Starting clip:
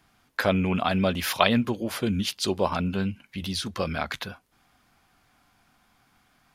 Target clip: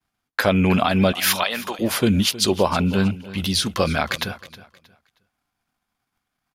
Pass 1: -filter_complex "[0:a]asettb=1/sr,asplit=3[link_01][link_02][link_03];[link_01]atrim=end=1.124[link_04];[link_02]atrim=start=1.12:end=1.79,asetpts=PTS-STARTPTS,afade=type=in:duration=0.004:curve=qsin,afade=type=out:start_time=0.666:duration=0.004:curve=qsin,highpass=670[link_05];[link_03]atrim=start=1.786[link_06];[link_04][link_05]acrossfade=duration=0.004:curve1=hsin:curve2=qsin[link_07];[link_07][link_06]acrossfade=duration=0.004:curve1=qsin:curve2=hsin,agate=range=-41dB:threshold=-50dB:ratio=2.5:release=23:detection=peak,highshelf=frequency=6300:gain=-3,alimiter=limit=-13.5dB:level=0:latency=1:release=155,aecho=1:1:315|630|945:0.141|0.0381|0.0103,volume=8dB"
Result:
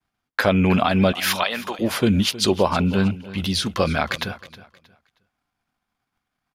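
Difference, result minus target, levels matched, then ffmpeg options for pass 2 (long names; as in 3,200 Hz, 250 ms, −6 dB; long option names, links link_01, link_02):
8,000 Hz band −4.0 dB
-filter_complex "[0:a]asettb=1/sr,asplit=3[link_01][link_02][link_03];[link_01]atrim=end=1.124[link_04];[link_02]atrim=start=1.12:end=1.79,asetpts=PTS-STARTPTS,afade=type=in:duration=0.004:curve=qsin,afade=type=out:start_time=0.666:duration=0.004:curve=qsin,highpass=670[link_05];[link_03]atrim=start=1.786[link_06];[link_04][link_05]acrossfade=duration=0.004:curve1=hsin:curve2=qsin[link_07];[link_07][link_06]acrossfade=duration=0.004:curve1=qsin:curve2=hsin,agate=range=-41dB:threshold=-50dB:ratio=2.5:release=23:detection=peak,highshelf=frequency=6300:gain=4.5,alimiter=limit=-13.5dB:level=0:latency=1:release=155,aecho=1:1:315|630|945:0.141|0.0381|0.0103,volume=8dB"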